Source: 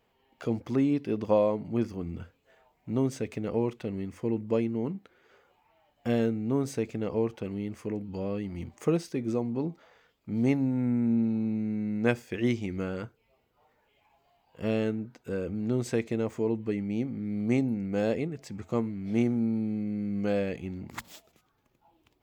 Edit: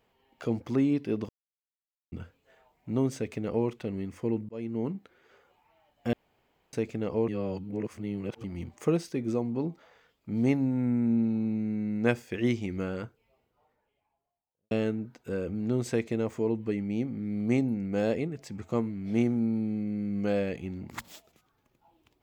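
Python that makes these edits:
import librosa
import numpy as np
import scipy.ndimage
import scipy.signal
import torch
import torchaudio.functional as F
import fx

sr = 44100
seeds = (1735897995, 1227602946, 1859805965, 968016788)

y = fx.studio_fade_out(x, sr, start_s=12.93, length_s=1.78)
y = fx.edit(y, sr, fx.silence(start_s=1.29, length_s=0.83),
    fx.fade_in_span(start_s=4.49, length_s=0.31),
    fx.room_tone_fill(start_s=6.13, length_s=0.6),
    fx.reverse_span(start_s=7.28, length_s=1.16), tone=tone)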